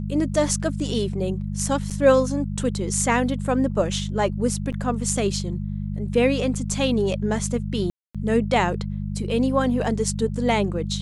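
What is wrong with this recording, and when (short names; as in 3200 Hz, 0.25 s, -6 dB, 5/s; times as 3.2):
hum 50 Hz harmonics 4 -28 dBFS
1.9–1.91 gap 7 ms
4.72–4.73 gap 6.9 ms
7.9–8.15 gap 0.246 s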